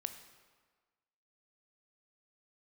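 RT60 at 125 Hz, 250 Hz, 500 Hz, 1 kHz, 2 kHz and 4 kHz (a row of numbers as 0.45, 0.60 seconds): 1.2, 1.4, 1.4, 1.5, 1.3, 1.1 seconds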